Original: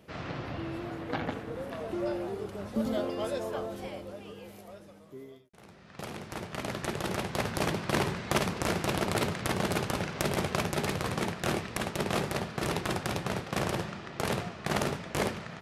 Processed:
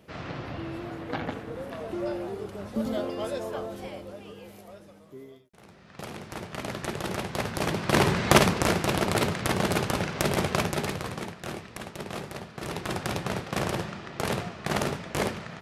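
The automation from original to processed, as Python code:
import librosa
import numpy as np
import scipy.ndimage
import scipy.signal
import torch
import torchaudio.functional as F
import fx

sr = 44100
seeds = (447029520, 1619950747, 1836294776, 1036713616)

y = fx.gain(x, sr, db=fx.line((7.62, 1.0), (8.27, 11.0), (8.81, 4.0), (10.61, 4.0), (11.37, -6.0), (12.52, -6.0), (13.03, 2.0)))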